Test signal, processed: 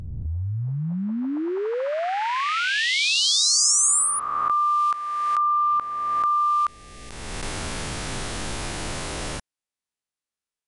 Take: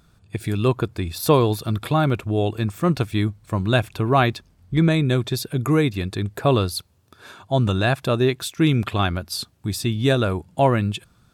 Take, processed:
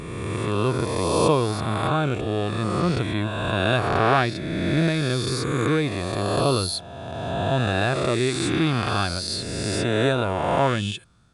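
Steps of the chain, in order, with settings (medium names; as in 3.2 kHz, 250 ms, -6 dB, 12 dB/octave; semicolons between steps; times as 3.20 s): reverse spectral sustain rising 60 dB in 2.17 s; brick-wall FIR low-pass 11 kHz; trim -5.5 dB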